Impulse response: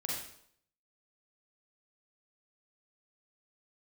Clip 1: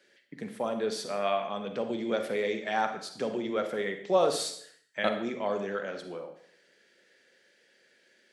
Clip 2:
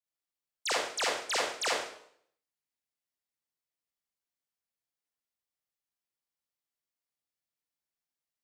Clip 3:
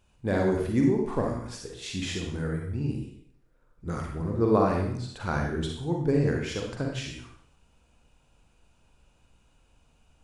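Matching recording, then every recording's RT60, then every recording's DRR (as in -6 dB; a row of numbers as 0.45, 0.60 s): 2; 0.65, 0.65, 0.65 s; 7.0, -4.0, 0.0 dB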